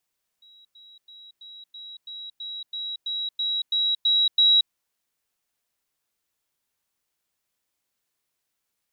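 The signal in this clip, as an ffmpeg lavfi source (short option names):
-f lavfi -i "aevalsrc='pow(10,(-50+3*floor(t/0.33))/20)*sin(2*PI*3870*t)*clip(min(mod(t,0.33),0.23-mod(t,0.33))/0.005,0,1)':d=4.29:s=44100"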